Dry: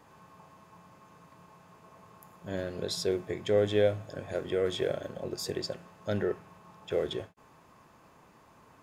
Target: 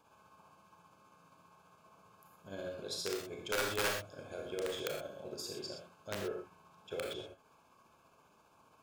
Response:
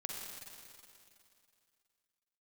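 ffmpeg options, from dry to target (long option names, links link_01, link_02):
-filter_complex "[0:a]tremolo=f=15:d=0.48,asuperstop=centerf=1900:order=20:qfactor=4.8,aeval=exprs='(mod(10.6*val(0)+1,2)-1)/10.6':channel_layout=same,lowshelf=frequency=490:gain=-6.5[link_01];[1:a]atrim=start_sample=2205,afade=type=out:start_time=0.25:duration=0.01,atrim=end_sample=11466,asetrate=66150,aresample=44100[link_02];[link_01][link_02]afir=irnorm=-1:irlink=0,asoftclip=type=tanh:threshold=-24.5dB,volume=2dB"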